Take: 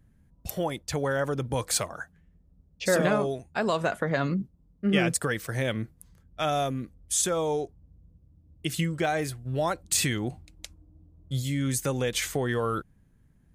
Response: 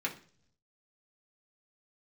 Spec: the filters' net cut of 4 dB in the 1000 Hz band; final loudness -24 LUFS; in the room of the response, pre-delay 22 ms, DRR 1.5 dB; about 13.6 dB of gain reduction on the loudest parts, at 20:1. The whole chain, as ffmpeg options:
-filter_complex "[0:a]equalizer=f=1k:t=o:g=-6,acompressor=threshold=-33dB:ratio=20,asplit=2[a][b];[1:a]atrim=start_sample=2205,adelay=22[c];[b][c]afir=irnorm=-1:irlink=0,volume=-6dB[d];[a][d]amix=inputs=2:normalize=0,volume=12.5dB"

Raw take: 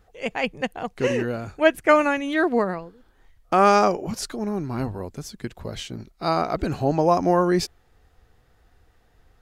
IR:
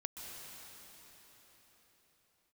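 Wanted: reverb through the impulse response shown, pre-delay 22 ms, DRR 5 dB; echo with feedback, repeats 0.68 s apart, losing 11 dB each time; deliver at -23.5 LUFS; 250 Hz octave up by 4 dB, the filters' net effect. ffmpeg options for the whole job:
-filter_complex "[0:a]equalizer=f=250:t=o:g=5.5,aecho=1:1:680|1360|2040:0.282|0.0789|0.0221,asplit=2[a][b];[1:a]atrim=start_sample=2205,adelay=22[c];[b][c]afir=irnorm=-1:irlink=0,volume=-4dB[d];[a][d]amix=inputs=2:normalize=0,volume=-3dB"

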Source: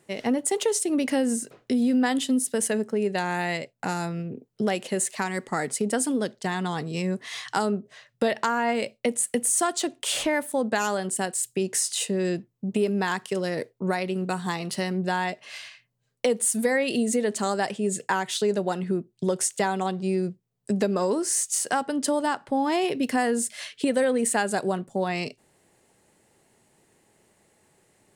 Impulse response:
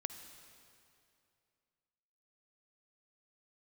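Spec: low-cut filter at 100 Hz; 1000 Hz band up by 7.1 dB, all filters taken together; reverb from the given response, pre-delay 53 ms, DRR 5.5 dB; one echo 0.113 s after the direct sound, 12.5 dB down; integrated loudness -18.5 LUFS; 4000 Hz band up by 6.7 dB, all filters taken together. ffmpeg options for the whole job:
-filter_complex "[0:a]highpass=100,equalizer=f=1k:t=o:g=9,equalizer=f=4k:t=o:g=8,aecho=1:1:113:0.237,asplit=2[a][b];[1:a]atrim=start_sample=2205,adelay=53[c];[b][c]afir=irnorm=-1:irlink=0,volume=-4dB[d];[a][d]amix=inputs=2:normalize=0,volume=3.5dB"

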